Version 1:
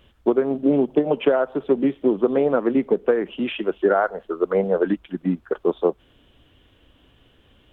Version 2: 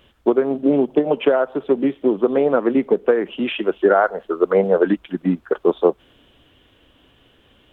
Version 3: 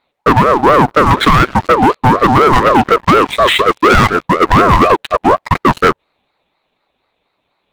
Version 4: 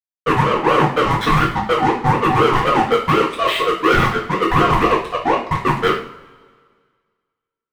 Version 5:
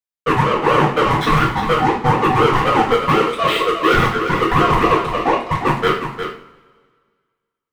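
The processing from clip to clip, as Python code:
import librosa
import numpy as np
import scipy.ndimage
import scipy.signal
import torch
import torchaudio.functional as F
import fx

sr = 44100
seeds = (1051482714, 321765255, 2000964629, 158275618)

y1 = fx.low_shelf(x, sr, hz=140.0, db=-7.5)
y1 = fx.rider(y1, sr, range_db=10, speed_s=2.0)
y1 = y1 * 10.0 ** (3.5 / 20.0)
y2 = fx.leveller(y1, sr, passes=5)
y2 = fx.ring_lfo(y2, sr, carrier_hz=700.0, swing_pct=30, hz=4.1)
y2 = y2 * 10.0 ** (1.0 / 20.0)
y3 = fx.power_curve(y2, sr, exponent=2.0)
y3 = fx.rev_double_slope(y3, sr, seeds[0], early_s=0.48, late_s=1.8, knee_db=-20, drr_db=-4.0)
y3 = y3 * 10.0 ** (-8.5 / 20.0)
y4 = y3 + 10.0 ** (-8.5 / 20.0) * np.pad(y3, (int(355 * sr / 1000.0), 0))[:len(y3)]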